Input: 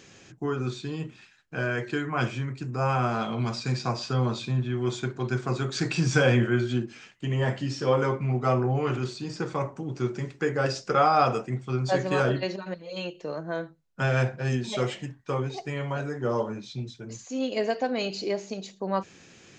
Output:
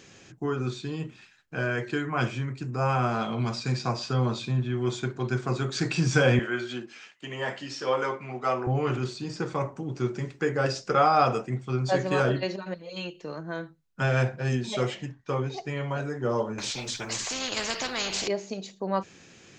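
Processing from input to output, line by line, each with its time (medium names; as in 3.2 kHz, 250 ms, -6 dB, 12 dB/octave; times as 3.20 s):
6.39–8.67 s: frequency weighting A
12.89–14.01 s: peaking EQ 590 Hz -6.5 dB
14.91–15.91 s: steep low-pass 7.4 kHz
16.58–18.28 s: spectrum-flattening compressor 4:1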